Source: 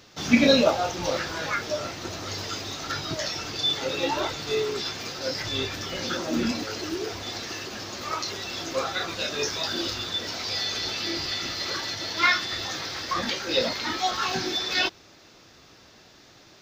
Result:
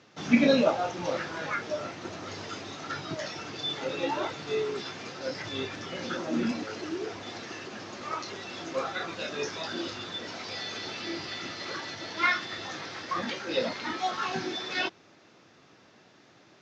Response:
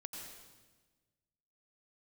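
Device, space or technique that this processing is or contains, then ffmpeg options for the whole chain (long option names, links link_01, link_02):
budget condenser microphone: -af "highpass=120,highpass=frequency=160:poles=1,lowpass=5500,lowpass=5900,bass=frequency=250:gain=5,treble=frequency=4000:gain=-6,highshelf=frequency=5900:width_type=q:width=1.5:gain=8.5,volume=-3dB"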